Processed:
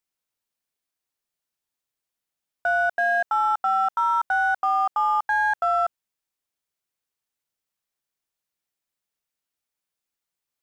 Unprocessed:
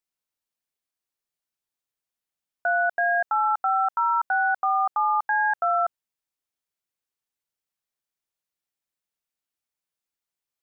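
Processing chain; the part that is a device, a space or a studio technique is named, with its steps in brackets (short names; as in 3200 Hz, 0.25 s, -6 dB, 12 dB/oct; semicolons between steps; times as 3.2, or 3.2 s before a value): parallel distortion (in parallel at -10 dB: hard clip -31 dBFS, distortion -6 dB)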